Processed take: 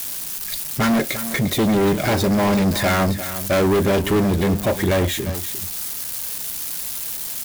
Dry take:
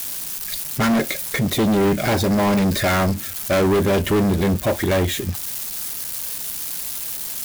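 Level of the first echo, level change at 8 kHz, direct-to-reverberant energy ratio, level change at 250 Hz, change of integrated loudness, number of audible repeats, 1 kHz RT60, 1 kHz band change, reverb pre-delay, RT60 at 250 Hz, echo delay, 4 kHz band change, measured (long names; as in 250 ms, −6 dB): −12.5 dB, 0.0 dB, no reverb audible, 0.0 dB, 0.0 dB, 1, no reverb audible, 0.0 dB, no reverb audible, no reverb audible, 349 ms, 0.0 dB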